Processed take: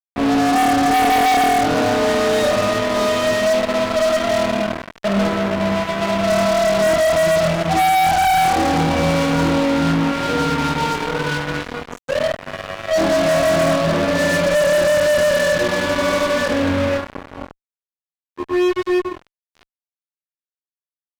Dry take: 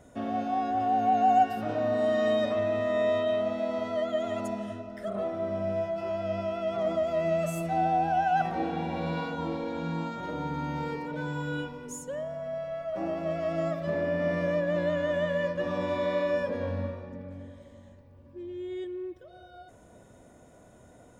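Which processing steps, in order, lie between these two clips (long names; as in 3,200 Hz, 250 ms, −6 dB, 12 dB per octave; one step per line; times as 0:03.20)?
high-frequency loss of the air 240 metres
flutter between parallel walls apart 4.3 metres, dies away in 0.79 s
fuzz pedal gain 34 dB, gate −35 dBFS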